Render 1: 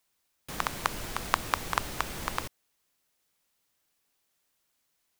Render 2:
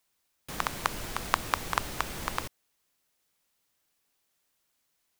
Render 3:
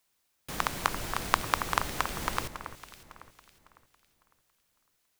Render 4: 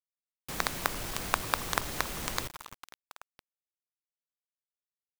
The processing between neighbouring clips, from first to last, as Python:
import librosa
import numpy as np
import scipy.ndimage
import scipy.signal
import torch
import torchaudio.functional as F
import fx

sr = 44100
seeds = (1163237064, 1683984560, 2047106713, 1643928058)

y1 = x
y2 = fx.echo_alternate(y1, sr, ms=277, hz=2200.0, feedback_pct=57, wet_db=-9)
y2 = y2 * librosa.db_to_amplitude(1.0)
y3 = fx.quant_companded(y2, sr, bits=2)
y3 = y3 * librosa.db_to_amplitude(-9.0)